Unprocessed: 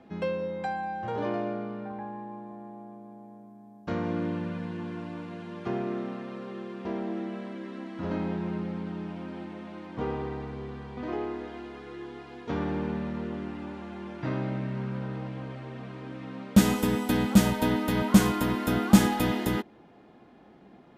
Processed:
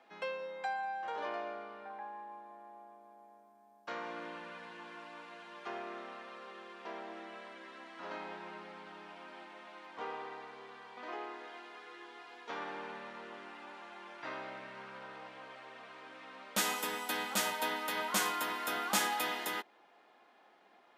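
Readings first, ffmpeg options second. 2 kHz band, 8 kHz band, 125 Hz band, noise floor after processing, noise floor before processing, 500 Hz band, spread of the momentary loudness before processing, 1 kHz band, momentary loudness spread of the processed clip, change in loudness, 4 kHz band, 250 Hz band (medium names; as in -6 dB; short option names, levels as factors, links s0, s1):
-1.5 dB, -1.5 dB, -28.5 dB, -64 dBFS, -54 dBFS, -11.0 dB, 19 LU, -3.5 dB, 18 LU, -10.0 dB, -1.5 dB, -22.5 dB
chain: -af "highpass=810,volume=0.841"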